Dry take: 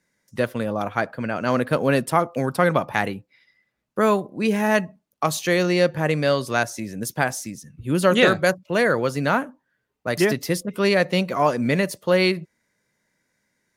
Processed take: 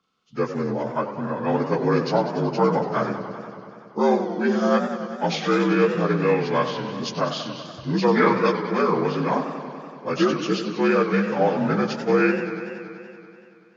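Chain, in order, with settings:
partials spread apart or drawn together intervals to 80%
feedback echo with a swinging delay time 95 ms, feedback 79%, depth 145 cents, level −10.5 dB

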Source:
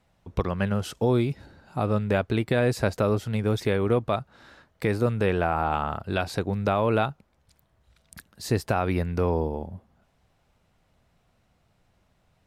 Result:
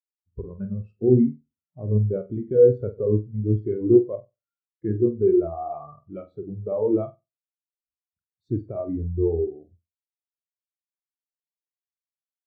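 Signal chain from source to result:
dynamic equaliser 410 Hz, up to +4 dB, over −36 dBFS, Q 1.2
formants moved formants −2 semitones
flutter between parallel walls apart 8.1 metres, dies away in 0.51 s
every bin expanded away from the loudest bin 2.5 to 1
level +2.5 dB

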